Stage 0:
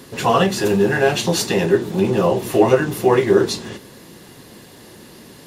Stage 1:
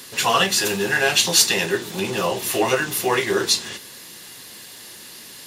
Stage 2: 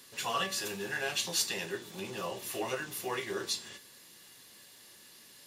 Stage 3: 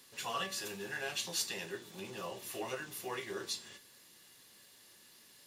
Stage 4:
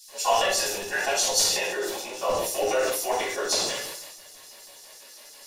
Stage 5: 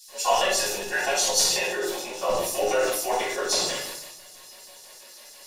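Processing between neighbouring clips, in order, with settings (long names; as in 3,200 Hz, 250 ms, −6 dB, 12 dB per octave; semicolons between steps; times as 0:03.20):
tilt shelving filter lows −9.5 dB, about 1,100 Hz; level −1 dB
tuned comb filter 570 Hz, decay 0.47 s, mix 70%; level −5.5 dB
surface crackle 320 per second −53 dBFS; level −5 dB
auto-filter high-pass square 6.1 Hz 570–5,700 Hz; rectangular room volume 520 cubic metres, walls furnished, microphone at 8.8 metres; level that may fall only so fast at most 37 dB per second; level +2 dB
rectangular room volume 1,000 cubic metres, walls furnished, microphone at 0.97 metres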